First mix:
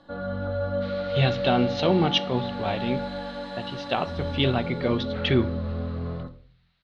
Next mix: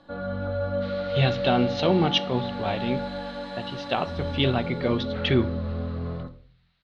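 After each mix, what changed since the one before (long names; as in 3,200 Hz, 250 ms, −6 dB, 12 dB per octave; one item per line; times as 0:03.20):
first sound: remove Butterworth band-reject 2,400 Hz, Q 7.4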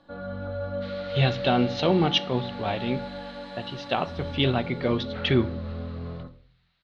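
first sound −4.0 dB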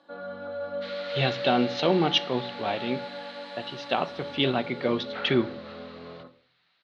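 speech: add high-pass filter 190 Hz 12 dB per octave
first sound: add high-pass filter 320 Hz 12 dB per octave
second sound +4.5 dB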